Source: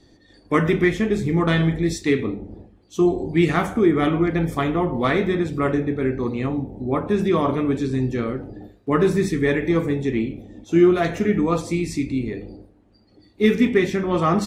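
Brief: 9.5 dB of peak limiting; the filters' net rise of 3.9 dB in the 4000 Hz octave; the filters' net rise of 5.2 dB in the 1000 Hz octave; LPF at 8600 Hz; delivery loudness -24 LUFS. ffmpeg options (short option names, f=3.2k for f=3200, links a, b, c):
-af "lowpass=8.6k,equalizer=f=1k:t=o:g=6.5,equalizer=f=4k:t=o:g=4.5,volume=-0.5dB,alimiter=limit=-14dB:level=0:latency=1"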